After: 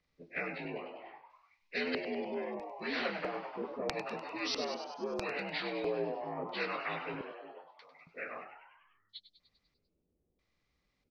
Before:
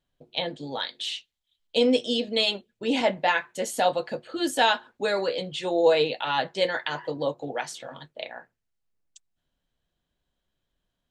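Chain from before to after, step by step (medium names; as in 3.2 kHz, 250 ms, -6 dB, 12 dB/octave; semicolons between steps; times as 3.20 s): frequency axis rescaled in octaves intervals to 82%; 7.21–8.07 s: differentiator; LFO low-pass square 0.77 Hz 400–4800 Hz; 8.97–9.40 s: time-frequency box 750–2900 Hz -14 dB; on a send: frequency-shifting echo 99 ms, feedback 60%, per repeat +100 Hz, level -13 dB; on the sum: spectrum-flattening compressor 2:1; trim -7 dB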